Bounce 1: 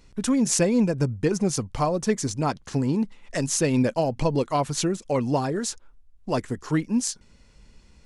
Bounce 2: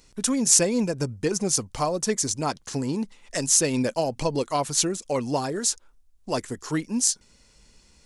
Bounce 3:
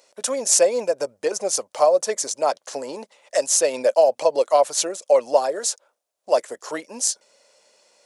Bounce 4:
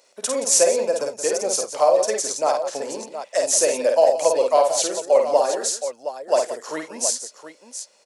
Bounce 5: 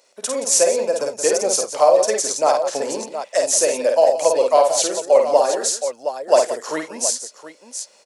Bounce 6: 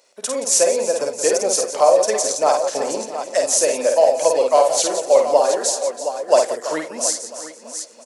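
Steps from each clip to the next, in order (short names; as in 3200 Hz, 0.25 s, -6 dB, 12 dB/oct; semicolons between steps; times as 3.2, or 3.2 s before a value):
tone controls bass -5 dB, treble +9 dB; gain -1 dB
resonant high-pass 580 Hz, resonance Q 4.9
tapped delay 51/84/174/719 ms -4/-18/-12.5/-10.5 dB; gain -1 dB
AGC gain up to 7 dB
feedback echo 0.332 s, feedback 57%, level -14 dB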